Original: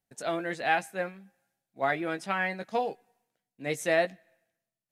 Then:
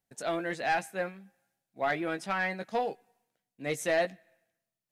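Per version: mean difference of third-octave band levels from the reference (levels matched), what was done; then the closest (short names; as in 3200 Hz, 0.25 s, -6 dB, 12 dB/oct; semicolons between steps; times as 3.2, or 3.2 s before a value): 1.5 dB: soft clip -19.5 dBFS, distortion -15 dB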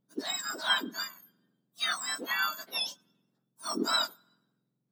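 12.5 dB: spectrum mirrored in octaves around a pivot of 1600 Hz; gain +1 dB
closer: first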